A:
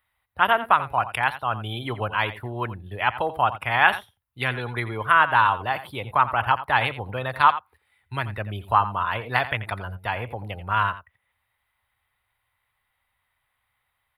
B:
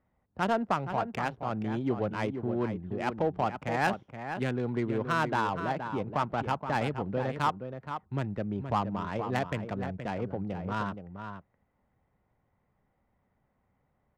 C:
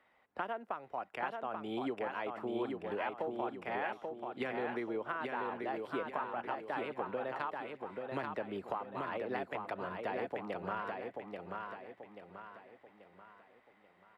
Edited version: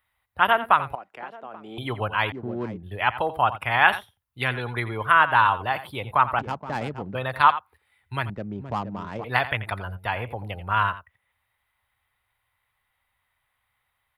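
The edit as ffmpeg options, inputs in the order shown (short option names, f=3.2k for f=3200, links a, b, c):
-filter_complex "[1:a]asplit=3[a][b][c];[0:a]asplit=5[d][e][f][g][h];[d]atrim=end=0.952[i];[2:a]atrim=start=0.948:end=1.782[j];[e]atrim=start=1.778:end=2.322[k];[a]atrim=start=2.318:end=2.832[l];[f]atrim=start=2.828:end=6.392[m];[b]atrim=start=6.388:end=7.152[n];[g]atrim=start=7.148:end=8.302[o];[c]atrim=start=8.298:end=9.242[p];[h]atrim=start=9.238[q];[i][j]acrossfade=d=0.004:c1=hsin:c2=hsin[r];[r][k]acrossfade=d=0.004:c1=hsin:c2=hsin[s];[s][l]acrossfade=d=0.004:c1=hsin:c2=hsin[t];[t][m]acrossfade=d=0.004:c1=hsin:c2=hsin[u];[u][n]acrossfade=d=0.004:c1=hsin:c2=hsin[v];[v][o]acrossfade=d=0.004:c1=hsin:c2=hsin[w];[w][p]acrossfade=d=0.004:c1=hsin:c2=hsin[x];[x][q]acrossfade=d=0.004:c1=hsin:c2=hsin"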